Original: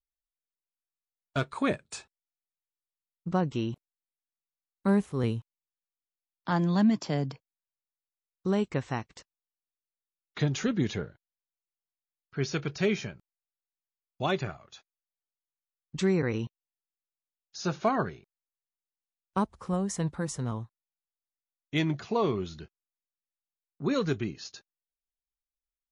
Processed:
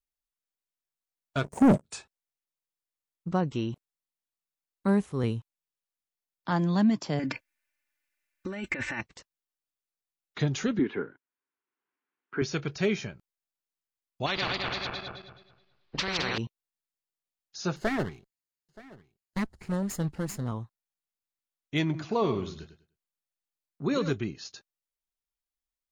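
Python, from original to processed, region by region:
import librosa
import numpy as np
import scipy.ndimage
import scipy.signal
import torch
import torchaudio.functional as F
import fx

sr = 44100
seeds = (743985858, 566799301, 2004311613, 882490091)

y = fx.chain(x, sr, fx.cheby1_bandstop(low_hz=770.0, high_hz=5800.0, order=4),
    fx.peak_eq(hz=200.0, db=9.5, octaves=0.82),
    fx.leveller(passes=3), at=(1.44, 1.84))
y = fx.chain(y, sr, fx.band_shelf(hz=2000.0, db=12.5, octaves=1.0),
    fx.comb(ms=3.4, depth=0.94),
    fx.over_compress(threshold_db=-33.0, ratio=-1.0), at=(7.19, 9.01))
y = fx.chain(y, sr, fx.cabinet(low_hz=250.0, low_slope=12, high_hz=2600.0, hz=(270.0, 390.0, 610.0, 1000.0, 1500.0), db=(10, 7, -9, 5, 6)),
    fx.band_squash(depth_pct=40), at=(10.79, 12.42))
y = fx.chain(y, sr, fx.reverse_delay_fb(ms=107, feedback_pct=51, wet_db=-1.5),
    fx.cheby1_lowpass(hz=4400.0, order=4),
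    fx.spectral_comp(ratio=4.0), at=(14.26, 16.38))
y = fx.chain(y, sr, fx.lower_of_two(delay_ms=0.42),
    fx.filter_lfo_notch(shape='square', hz=4.6, low_hz=540.0, high_hz=2400.0, q=2.2),
    fx.echo_single(ms=926, db=-21.0), at=(17.76, 20.48))
y = fx.chain(y, sr, fx.quant_float(bits=8),
    fx.echo_feedback(ms=100, feedback_pct=22, wet_db=-10.5), at=(21.84, 24.11))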